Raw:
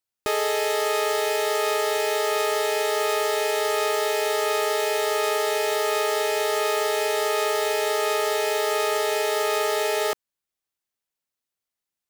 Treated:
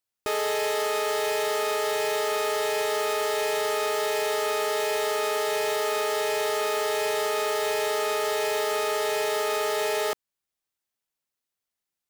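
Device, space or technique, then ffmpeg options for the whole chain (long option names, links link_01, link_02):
limiter into clipper: -af "alimiter=limit=-17dB:level=0:latency=1:release=271,asoftclip=type=hard:threshold=-21dB"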